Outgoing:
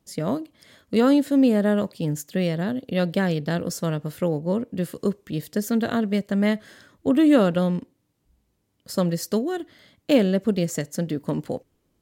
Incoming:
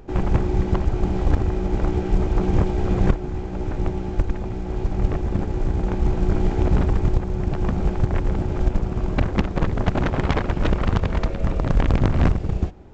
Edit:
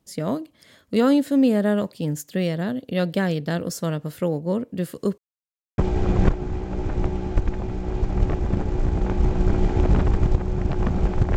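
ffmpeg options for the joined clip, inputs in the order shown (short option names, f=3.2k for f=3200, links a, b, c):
-filter_complex "[0:a]apad=whole_dur=11.36,atrim=end=11.36,asplit=2[a][b];[a]atrim=end=5.18,asetpts=PTS-STARTPTS,afade=t=out:st=5.176:d=0.004:c=hsin[c];[b]atrim=start=5.18:end=5.78,asetpts=PTS-STARTPTS,volume=0[d];[1:a]atrim=start=2.6:end=8.18,asetpts=PTS-STARTPTS,afade=t=in:d=0.004:c=hsin[e];[c][d][e]concat=n=3:v=0:a=1"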